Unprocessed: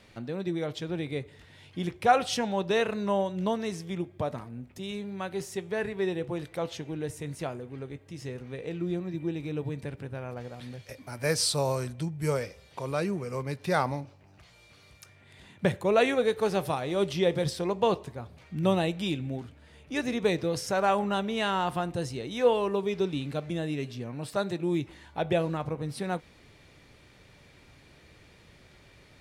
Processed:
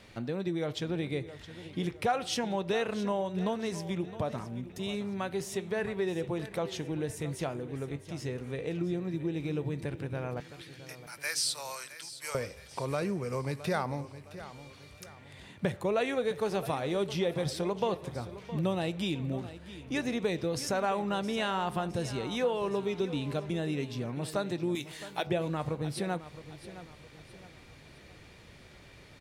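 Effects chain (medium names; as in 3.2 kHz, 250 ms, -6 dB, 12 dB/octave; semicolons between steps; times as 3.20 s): 10.40–12.35 s: high-pass 1.5 kHz 12 dB/octave; 24.75–25.27 s: tilt EQ +4 dB/octave; compression 2.5:1, threshold -32 dBFS, peak gain reduction 11 dB; feedback delay 665 ms, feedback 40%, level -14.5 dB; trim +2 dB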